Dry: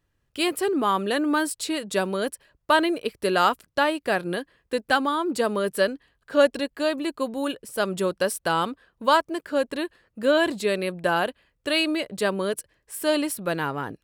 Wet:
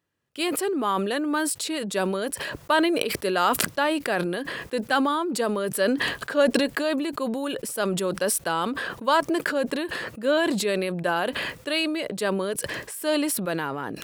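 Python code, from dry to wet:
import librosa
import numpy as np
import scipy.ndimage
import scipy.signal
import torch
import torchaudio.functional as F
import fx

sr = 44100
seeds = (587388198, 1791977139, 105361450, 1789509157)

y = scipy.signal.sosfilt(scipy.signal.butter(2, 150.0, 'highpass', fs=sr, output='sos'), x)
y = fx.sustainer(y, sr, db_per_s=23.0)
y = y * 10.0 ** (-2.5 / 20.0)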